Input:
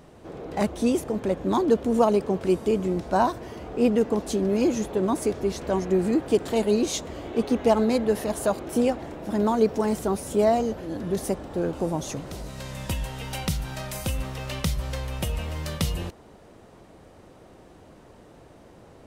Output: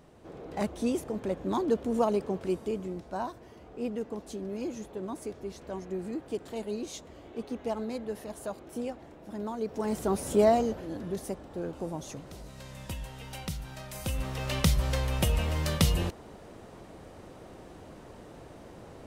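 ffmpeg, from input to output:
-af "volume=17dB,afade=t=out:st=2.25:d=0.85:silence=0.473151,afade=t=in:st=9.64:d=0.66:silence=0.237137,afade=t=out:st=10.3:d=0.93:silence=0.375837,afade=t=in:st=13.89:d=0.78:silence=0.281838"

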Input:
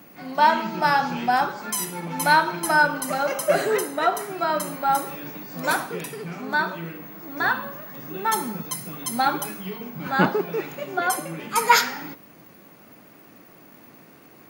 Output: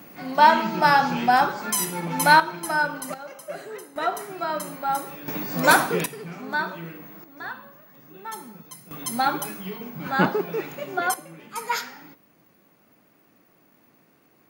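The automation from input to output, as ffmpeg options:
-af "asetnsamples=n=441:p=0,asendcmd='2.4 volume volume -5dB;3.14 volume volume -15dB;3.96 volume volume -4dB;5.28 volume volume 7dB;6.06 volume volume -3dB;7.24 volume volume -12.5dB;8.91 volume volume -1dB;11.14 volume volume -10.5dB',volume=2.5dB"

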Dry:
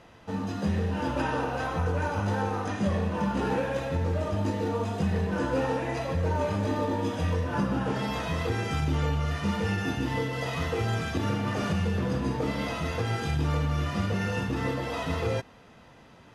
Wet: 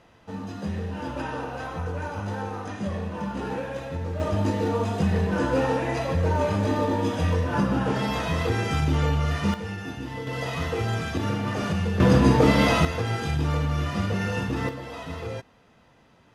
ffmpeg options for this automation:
-af "asetnsamples=n=441:p=0,asendcmd='4.2 volume volume 4dB;9.54 volume volume -5dB;10.27 volume volume 1.5dB;12 volume volume 11.5dB;12.85 volume volume 2dB;14.69 volume volume -5dB',volume=-3dB"

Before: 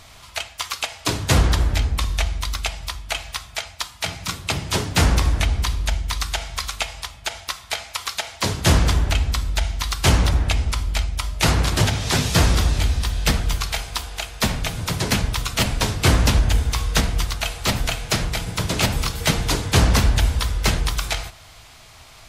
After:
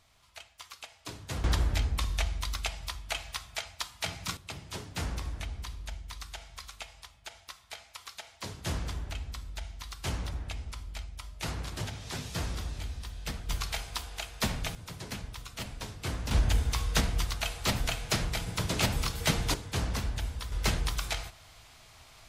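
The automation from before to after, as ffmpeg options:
-af "asetnsamples=n=441:p=0,asendcmd='1.44 volume volume -8.5dB;4.37 volume volume -18dB;13.49 volume volume -9.5dB;14.75 volume volume -19dB;16.31 volume volume -8dB;19.54 volume volume -16dB;20.52 volume volume -9dB',volume=-20dB"

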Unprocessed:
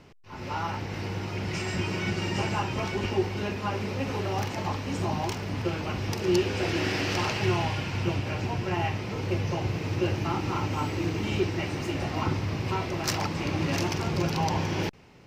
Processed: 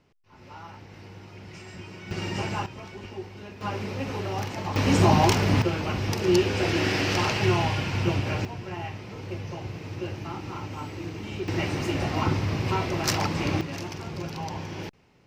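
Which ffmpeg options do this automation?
-af "asetnsamples=n=441:p=0,asendcmd='2.11 volume volume -1.5dB;2.66 volume volume -11dB;3.61 volume volume -1dB;4.76 volume volume 10.5dB;5.62 volume volume 3dB;8.45 volume volume -6.5dB;11.48 volume volume 3dB;13.61 volume volume -7dB',volume=-12dB"

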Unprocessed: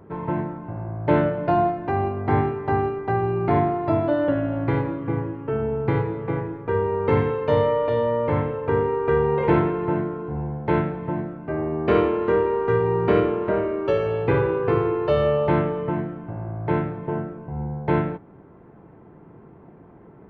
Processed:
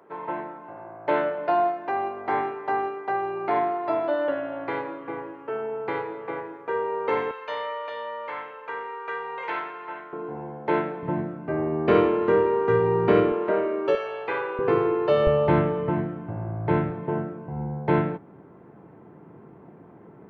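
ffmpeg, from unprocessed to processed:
-af "asetnsamples=n=441:p=0,asendcmd='7.31 highpass f 1200;10.13 highpass f 320;11.03 highpass f 120;13.32 highpass f 290;13.95 highpass f 750;14.59 highpass f 200;15.27 highpass f 56;16.9 highpass f 120',highpass=520"

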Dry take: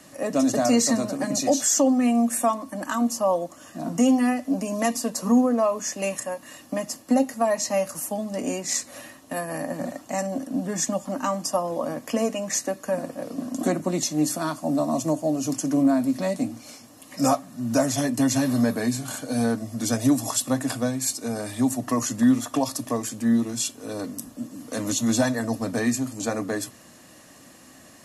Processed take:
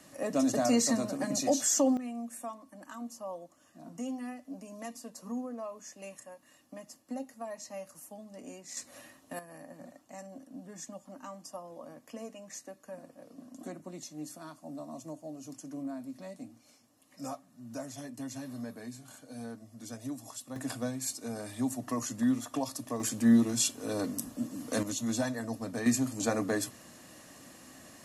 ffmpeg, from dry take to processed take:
-af "asetnsamples=n=441:p=0,asendcmd='1.97 volume volume -18.5dB;8.77 volume volume -10.5dB;9.39 volume volume -19dB;20.56 volume volume -9.5dB;23 volume volume -1.5dB;24.83 volume volume -10dB;25.86 volume volume -3dB',volume=-6.5dB"

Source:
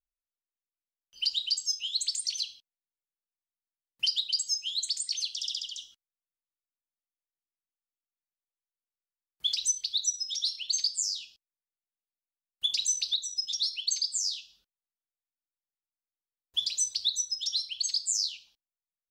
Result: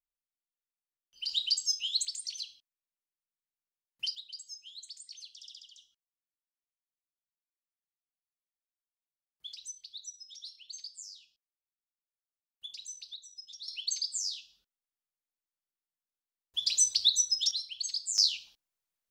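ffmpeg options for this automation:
-af "asetnsamples=n=441:p=0,asendcmd='1.29 volume volume 0dB;2.05 volume volume -7dB;4.15 volume volume -16dB;13.68 volume volume -4dB;16.67 volume volume 3.5dB;17.51 volume volume -5dB;18.18 volume volume 5.5dB',volume=-7.5dB"

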